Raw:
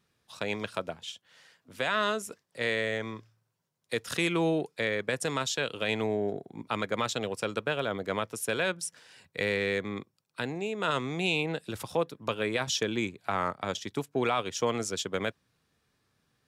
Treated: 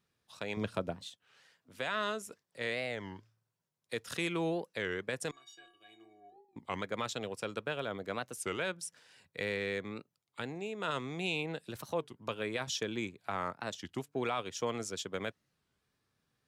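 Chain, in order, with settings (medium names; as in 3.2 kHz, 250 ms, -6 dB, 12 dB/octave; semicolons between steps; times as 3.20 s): 0.57–1.08 s: bass shelf 480 Hz +12 dB; 5.31–6.59 s: inharmonic resonator 340 Hz, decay 0.48 s, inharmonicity 0.03; warped record 33 1/3 rpm, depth 250 cents; trim -6.5 dB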